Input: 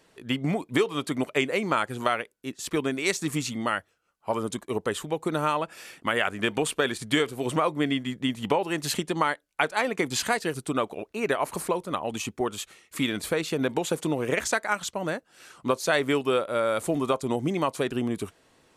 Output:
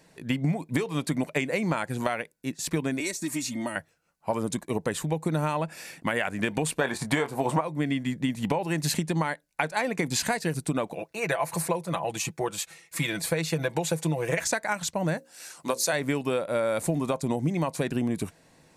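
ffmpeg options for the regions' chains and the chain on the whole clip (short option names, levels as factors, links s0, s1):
-filter_complex "[0:a]asettb=1/sr,asplit=3[s0][s1][s2];[s0]atrim=end=3.004[s3];[s1]atrim=start=3:end=3.76,asetpts=PTS-STARTPTS,afade=t=in:d=0.004:c=qsin,afade=t=out:st=0.756:d=0.004:c=qsin,aecho=1:1:3.2:0.74,atrim=end_sample=33516,acrossover=split=440|6200[s4][s5][s6];[s4]acompressor=threshold=0.0158:ratio=4[s7];[s5]acompressor=threshold=0.0141:ratio=4[s8];[s6]acompressor=threshold=0.0126:ratio=4[s9];[s7][s8][s9]amix=inputs=3:normalize=0[s10];[s2]atrim=start=3.756[s11];[s3][s10]acrossfade=d=0.004:c1=hsin:c2=qsin[s12];[s12][s11]acrossfade=d=0.004:c1=qsin:c2=hsin,asettb=1/sr,asplit=3[s13][s14][s15];[s13]atrim=end=6.814[s16];[s14]atrim=start=6.81:end=7.61,asetpts=PTS-STARTPTS,afade=t=in:d=0.004:c=qsin,afade=t=out:st=0.796:d=0.004:c=qsin,equalizer=f=900:t=o:w=1.4:g=14.5,asplit=2[s17][s18];[s18]adelay=22,volume=0.316[s19];[s17][s19]amix=inputs=2:normalize=0,atrim=end_sample=35280[s20];[s15]atrim=start=7.606[s21];[s16][s20]acrossfade=d=0.004:c1=hsin:c2=qsin[s22];[s22][s21]acrossfade=d=0.004:c1=qsin:c2=hsin,asettb=1/sr,asplit=3[s23][s24][s25];[s23]atrim=end=10.934[s26];[s24]atrim=start=10.93:end=14.46,asetpts=PTS-STARTPTS,afade=t=in:d=0.004:c=qsin,afade=t=out:st=3.526:d=0.004:c=qsin,highpass=82,equalizer=f=240:t=o:w=0.9:g=-11,aecho=1:1:6:0.57,atrim=end_sample=155673[s27];[s25]atrim=start=14.456[s28];[s26][s27]acrossfade=d=0.004:c1=hsin:c2=qsin[s29];[s29][s28]acrossfade=d=0.004:c1=qsin:c2=hsin,asettb=1/sr,asplit=3[s30][s31][s32];[s30]atrim=end=15.174[s33];[s31]atrim=start=15.17:end=15.93,asetpts=PTS-STARTPTS,afade=t=in:d=0.004:c=qsin,afade=t=out:st=0.756:d=0.004:c=qsin,bass=f=250:g=-13,treble=f=4000:g=8,bandreject=f=60:t=h:w=6,bandreject=f=120:t=h:w=6,bandreject=f=180:t=h:w=6,bandreject=f=240:t=h:w=6,bandreject=f=300:t=h:w=6,bandreject=f=360:t=h:w=6,bandreject=f=420:t=h:w=6,bandreject=f=480:t=h:w=6,bandreject=f=540:t=h:w=6,bandreject=f=600:t=h:w=6[s34];[s32]atrim=start=15.926[s35];[s33][s34]acrossfade=d=0.004:c1=hsin:c2=qsin[s36];[s36][s35]acrossfade=d=0.004:c1=qsin:c2=hsin,equalizer=f=160:t=o:w=0.33:g=9,equalizer=f=400:t=o:w=0.33:g=-6,equalizer=f=1250:t=o:w=0.33:g=-9,equalizer=f=3150:t=o:w=0.33:g=-8,acompressor=threshold=0.0501:ratio=6,volume=1.5"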